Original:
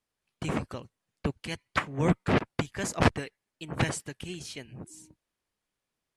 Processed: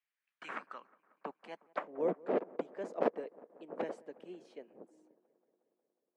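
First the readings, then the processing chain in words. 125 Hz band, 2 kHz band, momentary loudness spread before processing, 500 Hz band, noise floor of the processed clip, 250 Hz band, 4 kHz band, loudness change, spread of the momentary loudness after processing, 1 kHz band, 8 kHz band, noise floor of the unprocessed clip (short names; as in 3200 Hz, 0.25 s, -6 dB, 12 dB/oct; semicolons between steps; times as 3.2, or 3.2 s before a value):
-27.0 dB, -15.0 dB, 18 LU, -2.5 dB, under -85 dBFS, -12.0 dB, under -20 dB, -8.5 dB, 18 LU, -8.5 dB, under -30 dB, under -85 dBFS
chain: band-pass sweep 2200 Hz -> 510 Hz, 0.02–2.01; steep high-pass 190 Hz 36 dB/oct; on a send: dark delay 0.181 s, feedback 72%, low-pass 1500 Hz, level -22.5 dB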